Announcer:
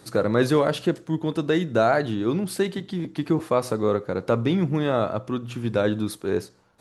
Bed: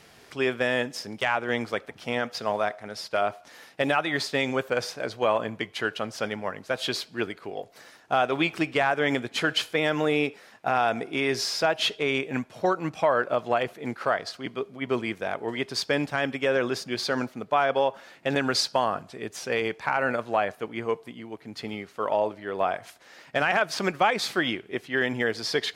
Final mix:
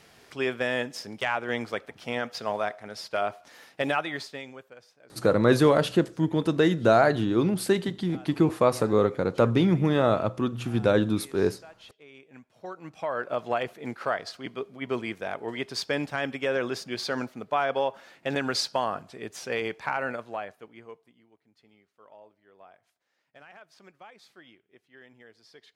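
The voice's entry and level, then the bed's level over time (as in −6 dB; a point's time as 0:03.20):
5.10 s, +0.5 dB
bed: 0:03.99 −2.5 dB
0:04.83 −25.5 dB
0:12.10 −25.5 dB
0:13.40 −3 dB
0:19.90 −3 dB
0:21.56 −27 dB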